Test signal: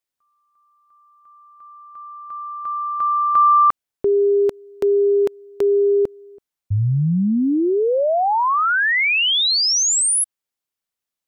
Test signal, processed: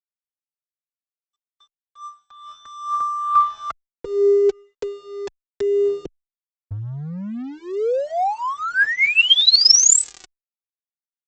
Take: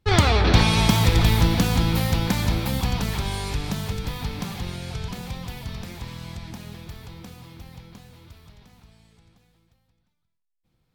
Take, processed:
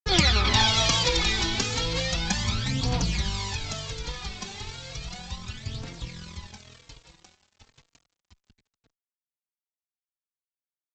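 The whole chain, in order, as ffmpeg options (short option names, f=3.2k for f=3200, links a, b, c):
-filter_complex "[0:a]highshelf=f=2.4k:g=11,acrossover=split=200[a][b];[a]acompressor=threshold=-27dB:ratio=3:release=81:knee=2.83:detection=peak[c];[c][b]amix=inputs=2:normalize=0,aphaser=in_gain=1:out_gain=1:delay=2.8:decay=0.6:speed=0.34:type=triangular,aresample=16000,aeval=exprs='sgn(val(0))*max(abs(val(0))-0.0158,0)':c=same,aresample=44100,asplit=2[d][e];[e]adelay=3.8,afreqshift=1[f];[d][f]amix=inputs=2:normalize=1,volume=-3dB"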